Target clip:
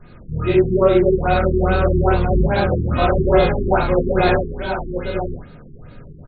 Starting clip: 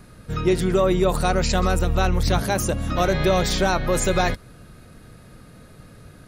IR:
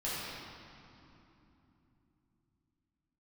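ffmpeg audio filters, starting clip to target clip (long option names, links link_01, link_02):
-filter_complex "[0:a]aecho=1:1:986:0.447[link_01];[1:a]atrim=start_sample=2205,atrim=end_sample=3969,asetrate=34398,aresample=44100[link_02];[link_01][link_02]afir=irnorm=-1:irlink=0,afftfilt=real='re*lt(b*sr/1024,420*pow(4700/420,0.5+0.5*sin(2*PI*2.4*pts/sr)))':imag='im*lt(b*sr/1024,420*pow(4700/420,0.5+0.5*sin(2*PI*2.4*pts/sr)))':win_size=1024:overlap=0.75"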